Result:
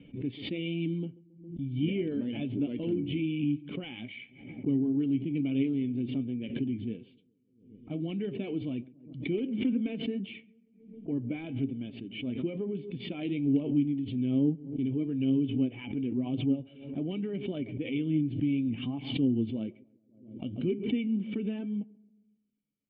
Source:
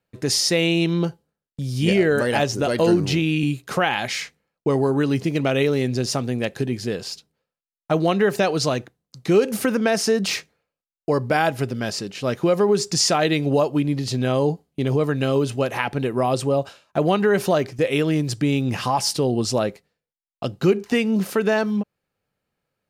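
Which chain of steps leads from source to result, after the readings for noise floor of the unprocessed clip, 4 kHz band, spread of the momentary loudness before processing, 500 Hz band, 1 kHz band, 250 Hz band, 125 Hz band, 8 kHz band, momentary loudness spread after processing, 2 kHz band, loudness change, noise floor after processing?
below −85 dBFS, −17.5 dB, 9 LU, −18.0 dB, below −25 dB, −6.0 dB, −10.5 dB, below −40 dB, 12 LU, −19.5 dB, −10.5 dB, −66 dBFS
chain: spectral magnitudes quantised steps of 15 dB
in parallel at −10.5 dB: wrap-around overflow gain 8.5 dB
on the sum: formant resonators in series i
on a send: feedback echo with a low-pass in the loop 136 ms, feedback 49%, low-pass 1,100 Hz, level −22 dB
on the sum: flanger 1.1 Hz, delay 6.2 ms, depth 3.5 ms, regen +62%
background raised ahead of every attack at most 87 dB per second

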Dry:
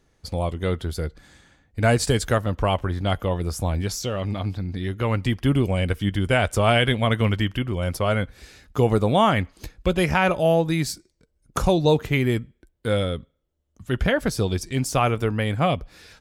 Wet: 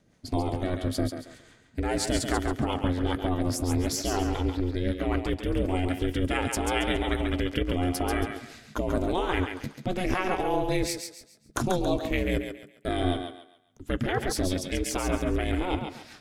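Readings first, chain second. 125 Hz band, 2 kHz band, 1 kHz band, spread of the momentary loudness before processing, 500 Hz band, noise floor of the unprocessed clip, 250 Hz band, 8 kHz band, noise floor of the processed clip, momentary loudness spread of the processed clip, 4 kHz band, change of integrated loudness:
−8.5 dB, −6.5 dB, −5.5 dB, 10 LU, −6.5 dB, −70 dBFS, −3.0 dB, −1.5 dB, −58 dBFS, 7 LU, −5.5 dB, −5.5 dB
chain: in parallel at +2 dB: compressor whose output falls as the input rises −24 dBFS, ratio −0.5
on the sum: rotating-speaker cabinet horn 5 Hz
ring modulation 180 Hz
feedback echo with a high-pass in the loop 138 ms, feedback 34%, high-pass 370 Hz, level −5.5 dB
level −5.5 dB

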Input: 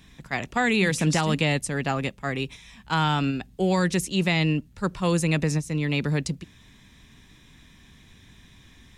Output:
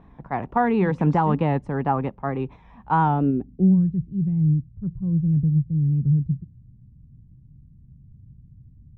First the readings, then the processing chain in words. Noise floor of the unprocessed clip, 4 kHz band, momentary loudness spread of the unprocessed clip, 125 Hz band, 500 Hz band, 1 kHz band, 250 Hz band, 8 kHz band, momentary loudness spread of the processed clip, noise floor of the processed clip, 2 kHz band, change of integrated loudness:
−54 dBFS, below −20 dB, 9 LU, +5.0 dB, −0.5 dB, +5.0 dB, +3.5 dB, below −35 dB, 9 LU, −51 dBFS, −9.0 dB, +2.5 dB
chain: dynamic equaliser 620 Hz, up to −7 dB, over −44 dBFS, Q 3.1
pitch vibrato 4.4 Hz 50 cents
low-pass filter sweep 890 Hz → 130 Hz, 0:03.01–0:03.87
level +2.5 dB

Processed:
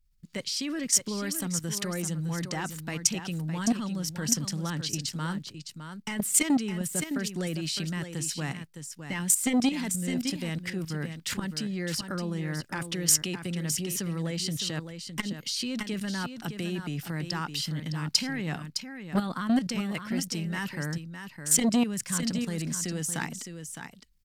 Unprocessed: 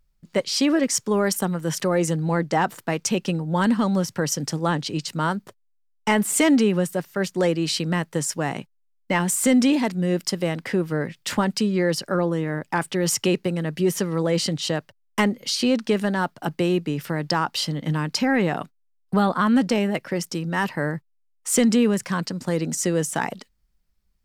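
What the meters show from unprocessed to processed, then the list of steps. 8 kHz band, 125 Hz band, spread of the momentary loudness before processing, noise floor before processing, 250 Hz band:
0.0 dB, −6.0 dB, 8 LU, −66 dBFS, −8.0 dB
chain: parametric band 620 Hz −14 dB 2.5 octaves
output level in coarse steps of 12 dB
single-tap delay 611 ms −9 dB
saturating transformer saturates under 730 Hz
level +4.5 dB

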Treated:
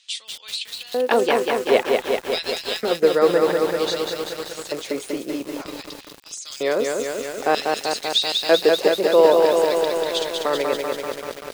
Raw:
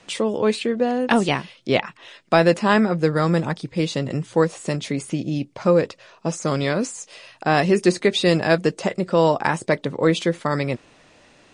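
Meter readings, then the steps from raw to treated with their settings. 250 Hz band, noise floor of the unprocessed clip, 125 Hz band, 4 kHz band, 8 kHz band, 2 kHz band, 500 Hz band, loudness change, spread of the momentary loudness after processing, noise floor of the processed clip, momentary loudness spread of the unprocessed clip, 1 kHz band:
−7.0 dB, −54 dBFS, −18.5 dB, +5.5 dB, +2.0 dB, −2.0 dB, +2.0 dB, +0.5 dB, 14 LU, −43 dBFS, 10 LU, −0.5 dB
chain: auto-filter high-pass square 0.53 Hz 430–3,700 Hz
feedback echo at a low word length 193 ms, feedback 80%, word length 6 bits, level −3 dB
level −2.5 dB

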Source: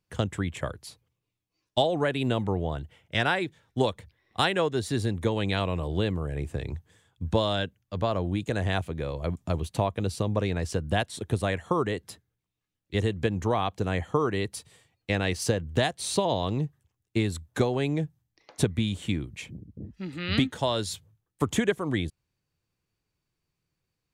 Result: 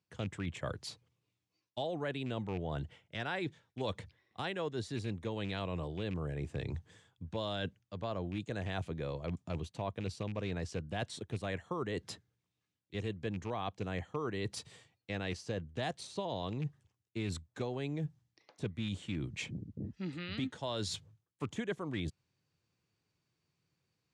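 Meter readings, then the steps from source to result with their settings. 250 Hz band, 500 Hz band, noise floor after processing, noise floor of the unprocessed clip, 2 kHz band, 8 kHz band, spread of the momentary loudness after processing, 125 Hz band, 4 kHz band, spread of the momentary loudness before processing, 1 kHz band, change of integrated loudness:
−10.0 dB, −11.0 dB, below −85 dBFS, −84 dBFS, −11.0 dB, −12.0 dB, 6 LU, −10.0 dB, −11.0 dB, 11 LU, −12.0 dB, −11.0 dB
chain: loose part that buzzes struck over −24 dBFS, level −28 dBFS
de-essing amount 70%
Chebyshev band-pass filter 110–6,300 Hz, order 2
reversed playback
downward compressor 5 to 1, threshold −37 dBFS, peak gain reduction 18 dB
reversed playback
level +1.5 dB

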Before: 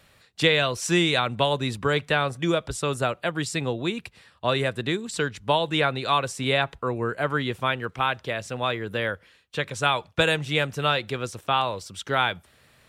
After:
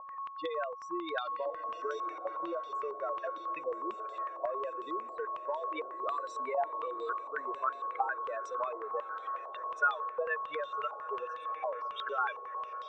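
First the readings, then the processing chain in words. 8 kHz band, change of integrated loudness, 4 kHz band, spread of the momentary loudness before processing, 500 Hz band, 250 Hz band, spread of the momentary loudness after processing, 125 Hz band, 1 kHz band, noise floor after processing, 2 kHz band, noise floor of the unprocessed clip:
below −25 dB, −11.0 dB, −24.0 dB, 8 LU, −10.5 dB, −19.0 dB, 5 LU, below −40 dB, −6.0 dB, −45 dBFS, −13.0 dB, −59 dBFS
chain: expanding power law on the bin magnitudes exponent 3.7
high-pass filter 450 Hz 24 dB per octave
downward compressor, threshold −31 dBFS, peak gain reduction 11.5 dB
gate pattern "x.xxxxxx.x" 80 BPM −24 dB
steady tone 1,100 Hz −40 dBFS
on a send: feedback delay with all-pass diffusion 1,113 ms, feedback 50%, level −11.5 dB
on the sum: low-pass on a step sequencer 11 Hz 810–3,500 Hz
level −5 dB

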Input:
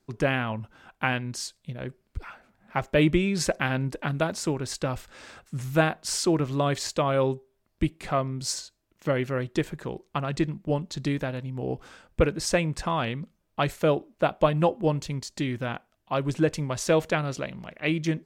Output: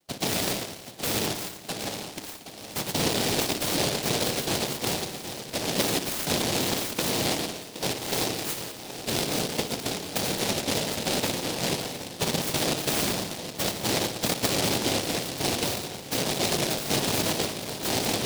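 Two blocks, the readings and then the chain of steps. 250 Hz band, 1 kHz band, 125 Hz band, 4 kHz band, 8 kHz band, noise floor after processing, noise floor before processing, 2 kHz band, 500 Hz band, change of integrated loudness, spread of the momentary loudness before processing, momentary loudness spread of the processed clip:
−2.5 dB, −1.5 dB, −5.5 dB, +9.5 dB, +8.0 dB, −42 dBFS, −73 dBFS, −0.5 dB, −3.5 dB, +0.5 dB, 14 LU, 8 LU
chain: delay that plays each chunk backwards 105 ms, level −9 dB
low-pass filter 5,000 Hz
notch filter 590 Hz, Q 18
in parallel at +2 dB: compressor whose output falls as the input rises −27 dBFS, ratio −0.5
on the sum: cochlear-implant simulation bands 2
delay with a low-pass on its return 770 ms, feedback 51%, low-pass 2,800 Hz, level −11 dB
spring reverb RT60 1.3 s, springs 57 ms, chirp 70 ms, DRR 7.5 dB
short delay modulated by noise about 3,700 Hz, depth 0.23 ms
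level −7 dB

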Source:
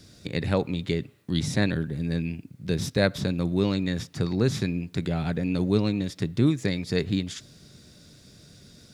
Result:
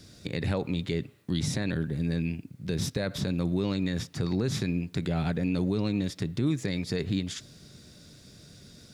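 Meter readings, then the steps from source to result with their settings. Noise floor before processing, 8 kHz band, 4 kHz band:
−54 dBFS, 0.0 dB, −3.0 dB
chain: brickwall limiter −18 dBFS, peak gain reduction 11 dB

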